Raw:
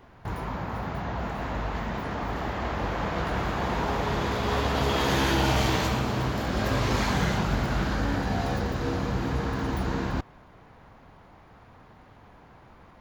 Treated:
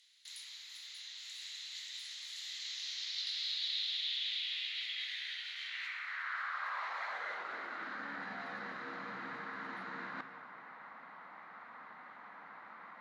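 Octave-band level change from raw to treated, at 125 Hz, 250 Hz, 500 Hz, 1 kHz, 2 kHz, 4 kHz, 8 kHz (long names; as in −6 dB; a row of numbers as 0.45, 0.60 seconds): −37.5, −26.0, −24.5, −15.0, −8.0, −2.0, −11.0 decibels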